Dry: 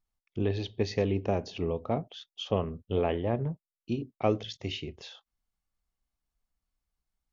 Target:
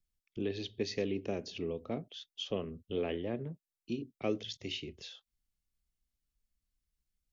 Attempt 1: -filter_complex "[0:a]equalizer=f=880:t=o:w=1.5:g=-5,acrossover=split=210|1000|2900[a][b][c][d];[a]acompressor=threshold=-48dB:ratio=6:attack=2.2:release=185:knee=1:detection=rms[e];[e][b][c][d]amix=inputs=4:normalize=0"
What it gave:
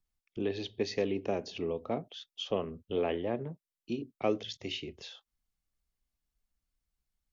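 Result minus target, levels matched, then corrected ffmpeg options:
1000 Hz band +5.0 dB
-filter_complex "[0:a]equalizer=f=880:t=o:w=1.5:g=-14.5,acrossover=split=210|1000|2900[a][b][c][d];[a]acompressor=threshold=-48dB:ratio=6:attack=2.2:release=185:knee=1:detection=rms[e];[e][b][c][d]amix=inputs=4:normalize=0"

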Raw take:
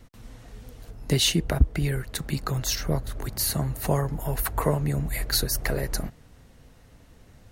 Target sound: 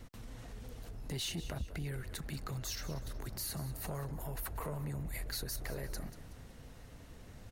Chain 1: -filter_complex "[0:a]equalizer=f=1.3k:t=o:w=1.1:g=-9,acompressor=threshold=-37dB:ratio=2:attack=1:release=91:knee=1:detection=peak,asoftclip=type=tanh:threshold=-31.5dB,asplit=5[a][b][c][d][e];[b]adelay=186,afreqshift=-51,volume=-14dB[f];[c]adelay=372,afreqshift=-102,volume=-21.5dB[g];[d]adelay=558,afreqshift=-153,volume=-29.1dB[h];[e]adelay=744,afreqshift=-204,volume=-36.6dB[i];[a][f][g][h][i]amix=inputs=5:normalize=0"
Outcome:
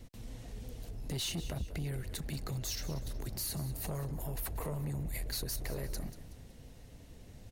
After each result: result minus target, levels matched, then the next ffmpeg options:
compressor: peak gain reduction -4 dB; 1000 Hz band -3.5 dB
-filter_complex "[0:a]equalizer=f=1.3k:t=o:w=1.1:g=-9,acompressor=threshold=-44.5dB:ratio=2:attack=1:release=91:knee=1:detection=peak,asoftclip=type=tanh:threshold=-31.5dB,asplit=5[a][b][c][d][e];[b]adelay=186,afreqshift=-51,volume=-14dB[f];[c]adelay=372,afreqshift=-102,volume=-21.5dB[g];[d]adelay=558,afreqshift=-153,volume=-29.1dB[h];[e]adelay=744,afreqshift=-204,volume=-36.6dB[i];[a][f][g][h][i]amix=inputs=5:normalize=0"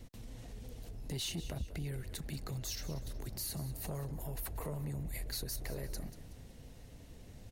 1000 Hz band -4.0 dB
-filter_complex "[0:a]acompressor=threshold=-44.5dB:ratio=2:attack=1:release=91:knee=1:detection=peak,asoftclip=type=tanh:threshold=-31.5dB,asplit=5[a][b][c][d][e];[b]adelay=186,afreqshift=-51,volume=-14dB[f];[c]adelay=372,afreqshift=-102,volume=-21.5dB[g];[d]adelay=558,afreqshift=-153,volume=-29.1dB[h];[e]adelay=744,afreqshift=-204,volume=-36.6dB[i];[a][f][g][h][i]amix=inputs=5:normalize=0"

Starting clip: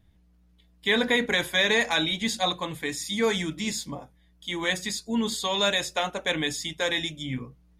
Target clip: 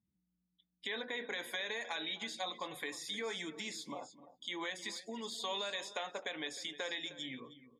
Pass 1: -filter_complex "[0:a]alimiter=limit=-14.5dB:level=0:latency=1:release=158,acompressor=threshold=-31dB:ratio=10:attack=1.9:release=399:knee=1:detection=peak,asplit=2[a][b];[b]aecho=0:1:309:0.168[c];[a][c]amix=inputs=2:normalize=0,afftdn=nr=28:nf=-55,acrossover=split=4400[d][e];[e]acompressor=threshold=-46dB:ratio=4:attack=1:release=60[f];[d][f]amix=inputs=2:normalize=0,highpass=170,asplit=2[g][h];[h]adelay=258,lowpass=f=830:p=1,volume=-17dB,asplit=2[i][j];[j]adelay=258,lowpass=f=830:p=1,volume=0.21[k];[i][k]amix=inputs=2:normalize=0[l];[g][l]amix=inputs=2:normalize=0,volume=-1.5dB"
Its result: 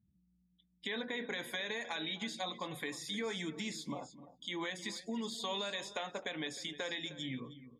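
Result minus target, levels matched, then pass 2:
125 Hz band +9.5 dB
-filter_complex "[0:a]alimiter=limit=-14.5dB:level=0:latency=1:release=158,acompressor=threshold=-31dB:ratio=10:attack=1.9:release=399:knee=1:detection=peak,asplit=2[a][b];[b]aecho=0:1:309:0.168[c];[a][c]amix=inputs=2:normalize=0,afftdn=nr=28:nf=-55,acrossover=split=4400[d][e];[e]acompressor=threshold=-46dB:ratio=4:attack=1:release=60[f];[d][f]amix=inputs=2:normalize=0,highpass=360,asplit=2[g][h];[h]adelay=258,lowpass=f=830:p=1,volume=-17dB,asplit=2[i][j];[j]adelay=258,lowpass=f=830:p=1,volume=0.21[k];[i][k]amix=inputs=2:normalize=0[l];[g][l]amix=inputs=2:normalize=0,volume=-1.5dB"

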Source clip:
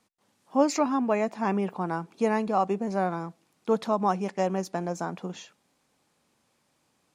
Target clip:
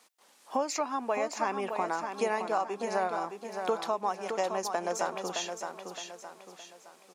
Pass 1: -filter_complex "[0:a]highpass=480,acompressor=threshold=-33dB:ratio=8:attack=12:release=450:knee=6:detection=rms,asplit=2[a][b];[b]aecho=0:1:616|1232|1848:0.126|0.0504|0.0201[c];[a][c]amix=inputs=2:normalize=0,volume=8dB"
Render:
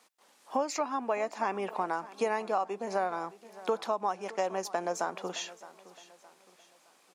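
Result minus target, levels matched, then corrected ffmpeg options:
echo-to-direct -11.5 dB; 8000 Hz band -3.0 dB
-filter_complex "[0:a]highpass=480,highshelf=f=3k:g=3.5,acompressor=threshold=-33dB:ratio=8:attack=12:release=450:knee=6:detection=rms,asplit=2[a][b];[b]aecho=0:1:616|1232|1848|2464|3080:0.473|0.189|0.0757|0.0303|0.0121[c];[a][c]amix=inputs=2:normalize=0,volume=8dB"

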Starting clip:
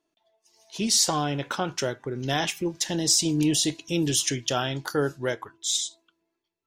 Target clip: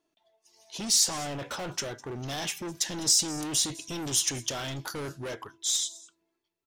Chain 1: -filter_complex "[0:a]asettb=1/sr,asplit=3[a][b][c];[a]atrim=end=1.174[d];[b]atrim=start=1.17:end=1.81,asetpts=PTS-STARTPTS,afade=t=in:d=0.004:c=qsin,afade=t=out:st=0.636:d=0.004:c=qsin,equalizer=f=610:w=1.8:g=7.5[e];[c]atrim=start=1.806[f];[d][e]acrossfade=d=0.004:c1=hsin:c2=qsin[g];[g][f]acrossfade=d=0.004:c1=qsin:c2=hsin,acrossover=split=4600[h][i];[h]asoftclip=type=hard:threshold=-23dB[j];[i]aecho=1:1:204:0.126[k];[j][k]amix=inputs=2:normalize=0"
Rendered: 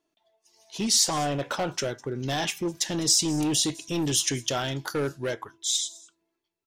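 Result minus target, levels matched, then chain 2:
hard clip: distortion -7 dB
-filter_complex "[0:a]asettb=1/sr,asplit=3[a][b][c];[a]atrim=end=1.174[d];[b]atrim=start=1.17:end=1.81,asetpts=PTS-STARTPTS,afade=t=in:d=0.004:c=qsin,afade=t=out:st=0.636:d=0.004:c=qsin,equalizer=f=610:w=1.8:g=7.5[e];[c]atrim=start=1.806[f];[d][e]acrossfade=d=0.004:c1=hsin:c2=qsin[g];[g][f]acrossfade=d=0.004:c1=qsin:c2=hsin,acrossover=split=4600[h][i];[h]asoftclip=type=hard:threshold=-33.5dB[j];[i]aecho=1:1:204:0.126[k];[j][k]amix=inputs=2:normalize=0"

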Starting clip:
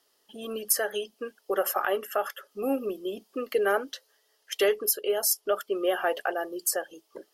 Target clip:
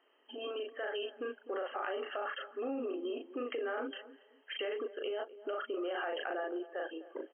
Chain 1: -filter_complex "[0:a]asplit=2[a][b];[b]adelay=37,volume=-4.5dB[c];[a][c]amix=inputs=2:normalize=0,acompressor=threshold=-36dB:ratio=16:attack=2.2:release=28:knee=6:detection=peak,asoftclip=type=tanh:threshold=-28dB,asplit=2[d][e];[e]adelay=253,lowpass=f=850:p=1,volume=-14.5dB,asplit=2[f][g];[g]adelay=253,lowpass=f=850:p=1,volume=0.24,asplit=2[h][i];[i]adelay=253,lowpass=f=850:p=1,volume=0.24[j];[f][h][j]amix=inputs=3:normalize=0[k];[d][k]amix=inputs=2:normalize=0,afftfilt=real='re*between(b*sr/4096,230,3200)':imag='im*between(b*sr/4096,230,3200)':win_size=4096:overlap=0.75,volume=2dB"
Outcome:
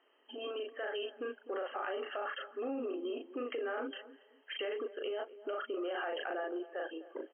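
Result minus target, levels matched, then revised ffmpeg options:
soft clip: distortion +22 dB
-filter_complex "[0:a]asplit=2[a][b];[b]adelay=37,volume=-4.5dB[c];[a][c]amix=inputs=2:normalize=0,acompressor=threshold=-36dB:ratio=16:attack=2.2:release=28:knee=6:detection=peak,asoftclip=type=tanh:threshold=-16dB,asplit=2[d][e];[e]adelay=253,lowpass=f=850:p=1,volume=-14.5dB,asplit=2[f][g];[g]adelay=253,lowpass=f=850:p=1,volume=0.24,asplit=2[h][i];[i]adelay=253,lowpass=f=850:p=1,volume=0.24[j];[f][h][j]amix=inputs=3:normalize=0[k];[d][k]amix=inputs=2:normalize=0,afftfilt=real='re*between(b*sr/4096,230,3200)':imag='im*between(b*sr/4096,230,3200)':win_size=4096:overlap=0.75,volume=2dB"

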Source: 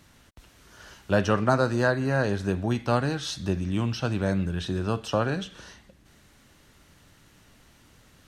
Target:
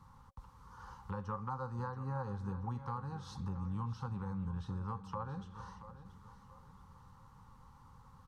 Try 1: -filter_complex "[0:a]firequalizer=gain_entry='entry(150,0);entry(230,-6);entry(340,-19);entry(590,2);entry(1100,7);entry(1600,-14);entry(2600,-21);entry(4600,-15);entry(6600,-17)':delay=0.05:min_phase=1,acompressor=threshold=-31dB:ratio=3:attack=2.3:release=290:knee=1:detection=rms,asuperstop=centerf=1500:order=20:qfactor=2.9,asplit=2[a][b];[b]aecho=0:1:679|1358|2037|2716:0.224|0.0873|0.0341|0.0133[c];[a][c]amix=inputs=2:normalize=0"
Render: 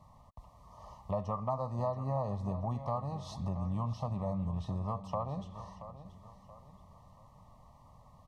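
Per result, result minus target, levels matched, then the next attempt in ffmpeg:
2000 Hz band -14.0 dB; compressor: peak gain reduction -4 dB
-filter_complex "[0:a]firequalizer=gain_entry='entry(150,0);entry(230,-6);entry(340,-19);entry(590,2);entry(1100,7);entry(1600,-14);entry(2600,-21);entry(4600,-15);entry(6600,-17)':delay=0.05:min_phase=1,acompressor=threshold=-31dB:ratio=3:attack=2.3:release=290:knee=1:detection=rms,asuperstop=centerf=650:order=20:qfactor=2.9,asplit=2[a][b];[b]aecho=0:1:679|1358|2037|2716:0.224|0.0873|0.0341|0.0133[c];[a][c]amix=inputs=2:normalize=0"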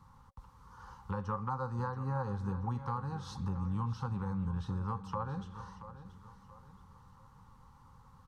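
compressor: peak gain reduction -4 dB
-filter_complex "[0:a]firequalizer=gain_entry='entry(150,0);entry(230,-6);entry(340,-19);entry(590,2);entry(1100,7);entry(1600,-14);entry(2600,-21);entry(4600,-15);entry(6600,-17)':delay=0.05:min_phase=1,acompressor=threshold=-37dB:ratio=3:attack=2.3:release=290:knee=1:detection=rms,asuperstop=centerf=650:order=20:qfactor=2.9,asplit=2[a][b];[b]aecho=0:1:679|1358|2037|2716:0.224|0.0873|0.0341|0.0133[c];[a][c]amix=inputs=2:normalize=0"

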